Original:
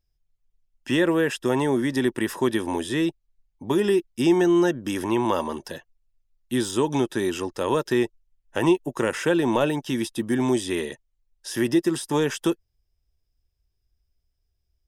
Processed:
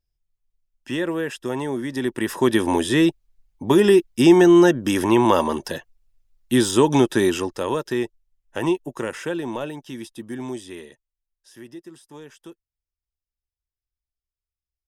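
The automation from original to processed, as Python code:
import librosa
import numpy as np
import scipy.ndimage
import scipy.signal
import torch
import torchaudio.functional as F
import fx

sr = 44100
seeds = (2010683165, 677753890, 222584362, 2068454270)

y = fx.gain(x, sr, db=fx.line((1.88, -4.0), (2.61, 6.5), (7.24, 6.5), (7.79, -2.0), (8.78, -2.0), (9.76, -8.5), (10.46, -8.5), (11.71, -19.0)))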